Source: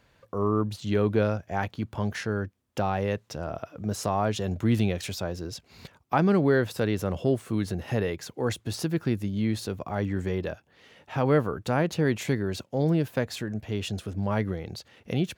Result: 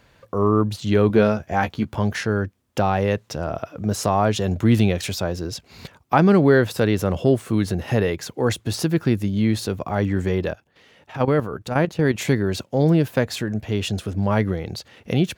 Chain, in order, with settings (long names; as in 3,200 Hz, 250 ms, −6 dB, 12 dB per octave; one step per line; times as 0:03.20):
0:01.08–0:01.95: double-tracking delay 14 ms −6.5 dB
0:10.51–0:12.18: output level in coarse steps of 12 dB
level +7 dB